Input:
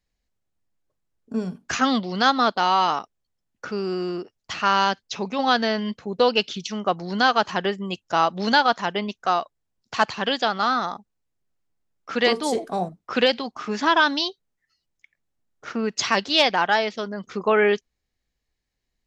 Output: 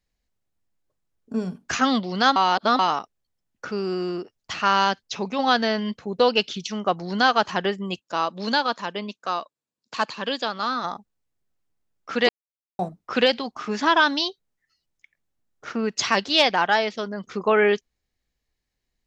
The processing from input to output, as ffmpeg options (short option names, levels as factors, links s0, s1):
-filter_complex "[0:a]asplit=3[s0][s1][s2];[s0]afade=t=out:st=7.99:d=0.02[s3];[s1]highpass=230,equalizer=f=380:t=q:w=4:g=-5,equalizer=f=750:t=q:w=4:g=-10,equalizer=f=1400:t=q:w=4:g=-5,equalizer=f=2000:t=q:w=4:g=-6,equalizer=f=3100:t=q:w=4:g=-4,equalizer=f=5800:t=q:w=4:g=-5,lowpass=f=8700:w=0.5412,lowpass=f=8700:w=1.3066,afade=t=in:st=7.99:d=0.02,afade=t=out:st=10.83:d=0.02[s4];[s2]afade=t=in:st=10.83:d=0.02[s5];[s3][s4][s5]amix=inputs=3:normalize=0,asplit=5[s6][s7][s8][s9][s10];[s6]atrim=end=2.362[s11];[s7]atrim=start=2.358:end=2.792,asetpts=PTS-STARTPTS,areverse[s12];[s8]atrim=start=2.788:end=12.29,asetpts=PTS-STARTPTS,afade=t=out:st=9.498:d=0.004:c=hsin[s13];[s9]atrim=start=12.29:end=12.79,asetpts=PTS-STARTPTS,volume=0[s14];[s10]atrim=start=12.79,asetpts=PTS-STARTPTS,afade=t=in:d=0.004:c=hsin[s15];[s11][s12]acrossfade=d=0.004:c1=hsin:c2=hsin[s16];[s13][s14][s15]concat=n=3:v=0:a=1[s17];[s16][s17]acrossfade=d=0.004:c1=hsin:c2=hsin"